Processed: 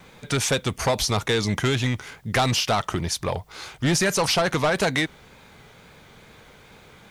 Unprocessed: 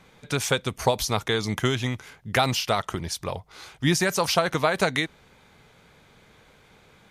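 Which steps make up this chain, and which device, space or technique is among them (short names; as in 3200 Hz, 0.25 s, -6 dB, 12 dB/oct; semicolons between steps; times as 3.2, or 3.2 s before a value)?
compact cassette (soft clip -22 dBFS, distortion -9 dB; LPF 11000 Hz 12 dB/oct; wow and flutter; white noise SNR 42 dB); gain +6 dB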